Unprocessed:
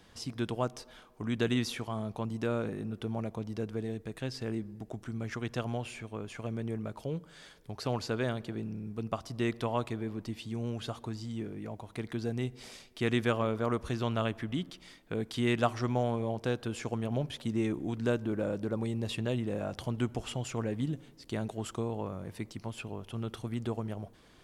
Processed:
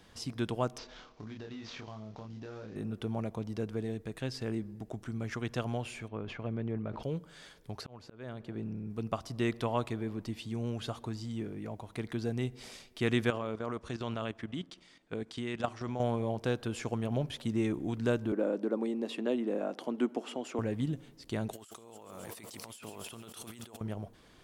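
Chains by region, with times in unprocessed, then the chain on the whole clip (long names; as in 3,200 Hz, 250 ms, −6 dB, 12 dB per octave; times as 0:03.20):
0:00.78–0:02.76: variable-slope delta modulation 32 kbit/s + double-tracking delay 28 ms −2.5 dB + downward compressor 10 to 1, threshold −41 dBFS
0:06.08–0:07.03: high-frequency loss of the air 250 metres + level that may fall only so fast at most 52 dB per second
0:07.81–0:08.90: high-shelf EQ 3,900 Hz −9.5 dB + volume swells 580 ms
0:13.30–0:16.00: low-shelf EQ 78 Hz −10.5 dB + output level in coarse steps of 12 dB + low-pass filter 9,100 Hz 24 dB per octave
0:18.32–0:20.59: Butterworth high-pass 240 Hz + spectral tilt −2.5 dB per octave
0:21.53–0:23.81: RIAA equalisation recording + echo machine with several playback heads 136 ms, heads first and second, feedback 55%, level −18 dB + compressor whose output falls as the input rises −49 dBFS
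whole clip: no processing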